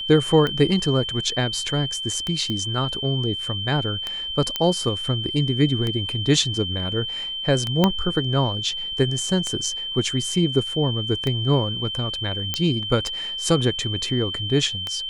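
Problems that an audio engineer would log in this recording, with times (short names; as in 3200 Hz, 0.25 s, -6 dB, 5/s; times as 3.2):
tick 33 1/3 rpm -12 dBFS
tone 3100 Hz -27 dBFS
2.5 pop -16 dBFS
4.56 pop -8 dBFS
7.84 pop -4 dBFS
12.54 pop -7 dBFS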